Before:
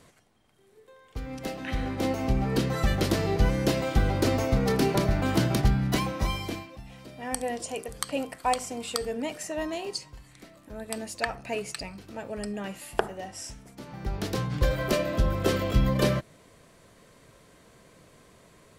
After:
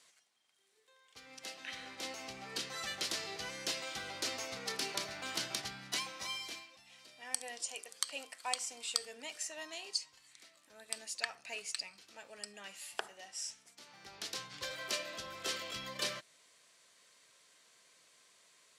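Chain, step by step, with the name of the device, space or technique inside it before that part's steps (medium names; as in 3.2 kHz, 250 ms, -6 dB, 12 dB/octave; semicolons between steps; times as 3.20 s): 7.69–8.44 s: high-pass 210 Hz 12 dB/octave; high-pass 68 Hz; piezo pickup straight into a mixer (low-pass 6 kHz 12 dB/octave; differentiator); trim +4 dB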